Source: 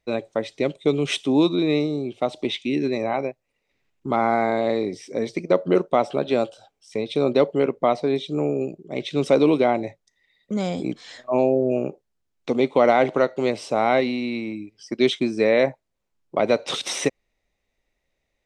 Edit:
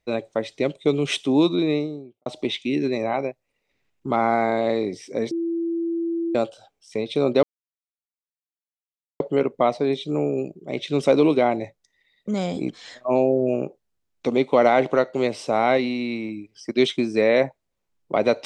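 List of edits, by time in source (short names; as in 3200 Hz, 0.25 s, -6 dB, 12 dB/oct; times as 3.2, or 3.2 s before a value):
1.56–2.26 studio fade out
5.31–6.35 bleep 335 Hz -22 dBFS
7.43 insert silence 1.77 s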